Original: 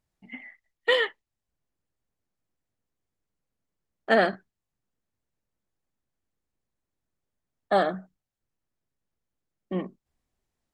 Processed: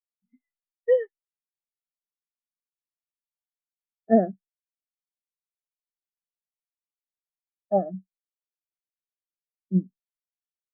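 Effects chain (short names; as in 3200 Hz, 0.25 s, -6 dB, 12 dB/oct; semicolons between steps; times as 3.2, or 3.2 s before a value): RIAA curve playback; spectral expander 2.5:1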